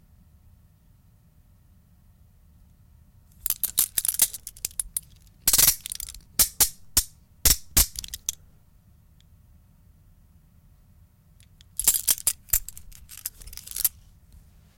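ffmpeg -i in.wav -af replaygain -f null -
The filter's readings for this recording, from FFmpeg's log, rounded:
track_gain = +8.3 dB
track_peak = 0.307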